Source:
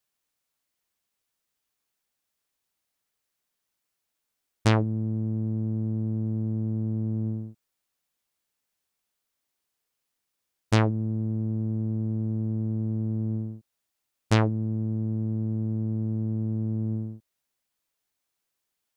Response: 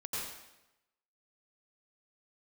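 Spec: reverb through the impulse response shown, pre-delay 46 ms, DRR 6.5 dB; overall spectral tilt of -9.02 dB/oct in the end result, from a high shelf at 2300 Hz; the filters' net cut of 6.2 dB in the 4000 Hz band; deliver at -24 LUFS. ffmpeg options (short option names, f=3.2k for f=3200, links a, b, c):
-filter_complex "[0:a]highshelf=f=2.3k:g=-4,equalizer=f=4k:t=o:g=-4.5,asplit=2[a][b];[1:a]atrim=start_sample=2205,adelay=46[c];[b][c]afir=irnorm=-1:irlink=0,volume=-9dB[d];[a][d]amix=inputs=2:normalize=0,volume=1.5dB"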